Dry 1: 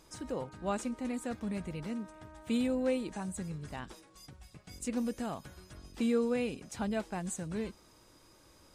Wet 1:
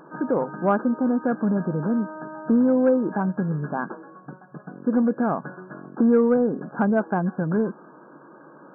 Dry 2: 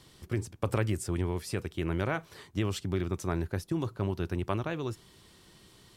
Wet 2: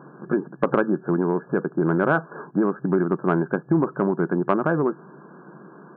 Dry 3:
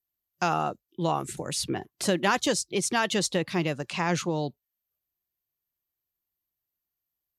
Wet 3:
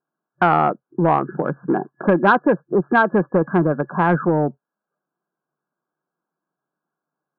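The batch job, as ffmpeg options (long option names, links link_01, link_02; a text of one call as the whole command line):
ffmpeg -i in.wav -filter_complex "[0:a]asplit=2[link_01][link_02];[link_02]acompressor=threshold=-36dB:ratio=6,volume=2.5dB[link_03];[link_01][link_03]amix=inputs=2:normalize=0,equalizer=frequency=250:width=0.41:gain=7,afftfilt=real='re*between(b*sr/4096,130,1700)':imag='im*between(b*sr/4096,130,1700)':win_size=4096:overlap=0.75,acontrast=78,tiltshelf=frequency=890:gain=-5.5" out.wav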